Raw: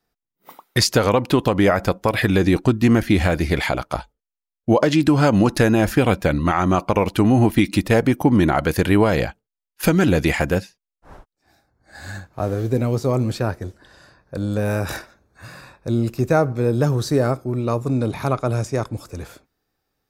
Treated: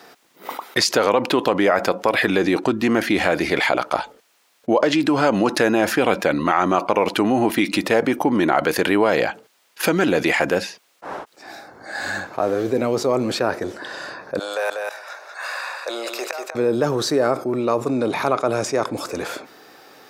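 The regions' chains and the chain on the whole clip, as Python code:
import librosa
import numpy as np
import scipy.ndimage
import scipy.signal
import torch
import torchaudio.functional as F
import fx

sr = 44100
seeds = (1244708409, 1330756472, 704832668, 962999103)

y = fx.chain(x, sr, fx.highpass(hz=600.0, slope=24),
    fx.gate_flip(shuts_db=-20.0, range_db=-27),
    fx.echo_single(ms=192, db=-8.5), at=(14.39, 16.55))
y = scipy.signal.sosfilt(scipy.signal.butter(2, 340.0, 'highpass', fs=sr, output='sos'), y)
y = fx.high_shelf(y, sr, hz=7100.0, db=-10.5)
y = fx.env_flatten(y, sr, amount_pct=50)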